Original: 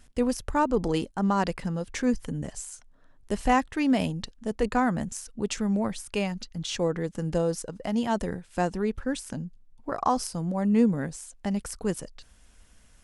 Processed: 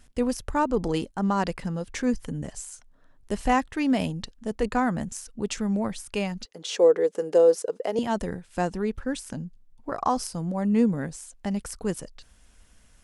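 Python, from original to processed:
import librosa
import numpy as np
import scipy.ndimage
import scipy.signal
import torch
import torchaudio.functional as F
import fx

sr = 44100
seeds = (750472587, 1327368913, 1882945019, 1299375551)

y = fx.highpass_res(x, sr, hz=440.0, q=4.7, at=(6.45, 7.99))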